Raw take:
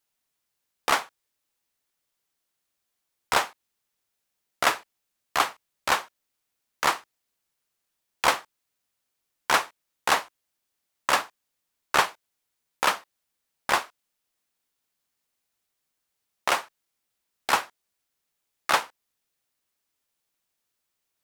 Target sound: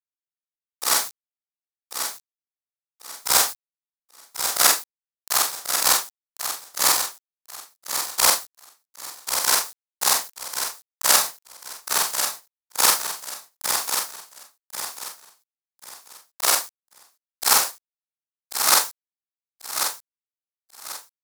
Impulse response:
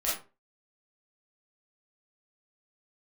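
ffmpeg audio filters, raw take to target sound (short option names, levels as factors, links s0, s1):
-filter_complex "[0:a]afftfilt=real='re':imag='-im':win_size=4096:overlap=0.75,highshelf=f=4100:g=4.5,asplit=2[s0][s1];[s1]acompressor=threshold=0.0158:ratio=10,volume=0.944[s2];[s0][s2]amix=inputs=2:normalize=0,acrusher=bits=7:mix=0:aa=0.000001,tremolo=f=1.7:d=0.53,asplit=2[s3][s4];[s4]aecho=0:1:1090|2180|3270:0.398|0.111|0.0312[s5];[s3][s5]amix=inputs=2:normalize=0,aexciter=amount=2.5:drive=9.2:freq=4100,volume=1.41"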